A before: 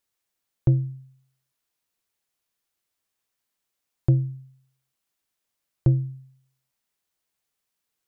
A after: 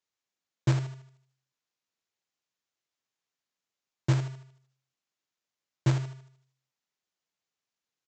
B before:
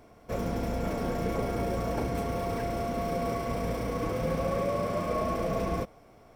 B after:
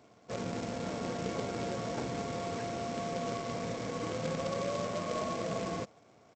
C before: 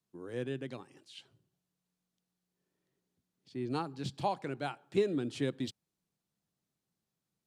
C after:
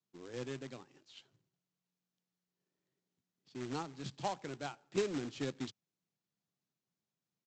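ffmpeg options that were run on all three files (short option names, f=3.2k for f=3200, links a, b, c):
-af "highpass=f=99:w=0.5412,highpass=f=99:w=1.3066,aresample=16000,acrusher=bits=2:mode=log:mix=0:aa=0.000001,aresample=44100,volume=-5.5dB"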